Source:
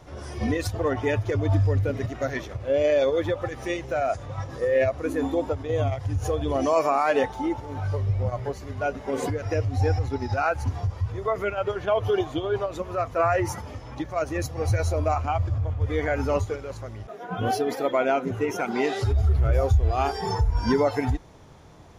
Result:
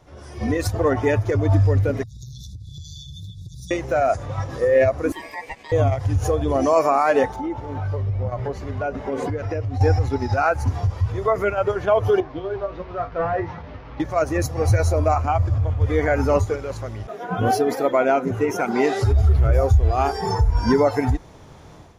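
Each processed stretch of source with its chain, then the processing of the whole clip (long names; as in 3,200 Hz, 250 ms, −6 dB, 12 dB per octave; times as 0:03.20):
0:02.03–0:03.71: linear-phase brick-wall band-stop 200–3,400 Hz + downward compressor 10 to 1, threshold −39 dBFS
0:05.12–0:05.72: high-pass filter 880 Hz + ring modulation 1,400 Hz
0:07.36–0:09.81: low-pass filter 2,600 Hz 6 dB per octave + downward compressor 2.5 to 1, threshold −30 dBFS
0:12.20–0:14.00: linear delta modulator 32 kbit/s, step −35 dBFS + low-pass filter 2,000 Hz + tuned comb filter 55 Hz, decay 0.19 s, harmonics odd, mix 80%
whole clip: dynamic equaliser 3,200 Hz, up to −7 dB, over −49 dBFS, Q 1.6; automatic gain control gain up to 11.5 dB; level −4.5 dB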